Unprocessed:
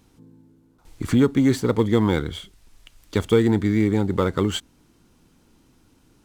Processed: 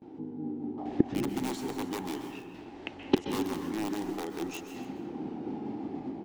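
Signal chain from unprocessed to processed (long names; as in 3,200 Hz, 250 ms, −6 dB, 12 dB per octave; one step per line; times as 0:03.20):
pitch shifter swept by a sawtooth −4 semitones, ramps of 1,240 ms
meter weighting curve A
low-pass that shuts in the quiet parts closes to 990 Hz, open at −25 dBFS
parametric band 1,200 Hz −14 dB 1.3 octaves
in parallel at +1 dB: brickwall limiter −24.5 dBFS, peak gain reduction 10 dB
on the sum: automatic gain control gain up to 12 dB
wrap-around overflow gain 7 dB
gate with flip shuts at −22 dBFS, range −34 dB
hollow resonant body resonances 320/800 Hz, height 11 dB, ringing for 25 ms
noise gate with hold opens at −49 dBFS
on a send: single-tap delay 281 ms −17.5 dB
on the sum: dense smooth reverb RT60 1.9 s, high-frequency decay 0.35×, pre-delay 115 ms, DRR 4.5 dB
level +8 dB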